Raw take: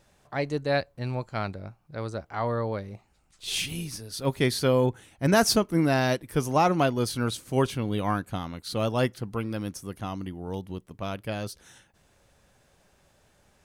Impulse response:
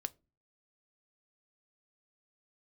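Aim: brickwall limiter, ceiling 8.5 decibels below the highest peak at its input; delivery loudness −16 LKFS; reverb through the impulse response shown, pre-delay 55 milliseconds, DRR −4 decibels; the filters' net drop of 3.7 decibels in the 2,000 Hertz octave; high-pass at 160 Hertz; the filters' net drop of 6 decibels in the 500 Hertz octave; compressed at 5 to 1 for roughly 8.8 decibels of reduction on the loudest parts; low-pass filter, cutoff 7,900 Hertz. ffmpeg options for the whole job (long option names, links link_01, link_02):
-filter_complex "[0:a]highpass=160,lowpass=7900,equalizer=frequency=500:width_type=o:gain=-7.5,equalizer=frequency=2000:width_type=o:gain=-4.5,acompressor=threshold=-30dB:ratio=5,alimiter=level_in=4dB:limit=-24dB:level=0:latency=1,volume=-4dB,asplit=2[link_01][link_02];[1:a]atrim=start_sample=2205,adelay=55[link_03];[link_02][link_03]afir=irnorm=-1:irlink=0,volume=5.5dB[link_04];[link_01][link_04]amix=inputs=2:normalize=0,volume=18dB"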